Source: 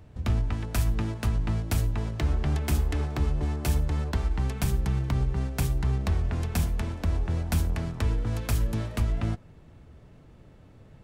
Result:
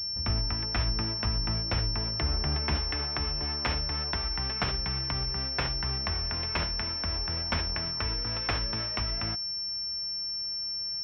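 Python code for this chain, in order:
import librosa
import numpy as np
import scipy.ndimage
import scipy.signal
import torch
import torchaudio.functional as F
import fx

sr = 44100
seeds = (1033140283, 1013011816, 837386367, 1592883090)

y = fx.tilt_shelf(x, sr, db=fx.steps((0.0, -5.0), (2.75, -9.5)), hz=850.0)
y = fx.pwm(y, sr, carrier_hz=5400.0)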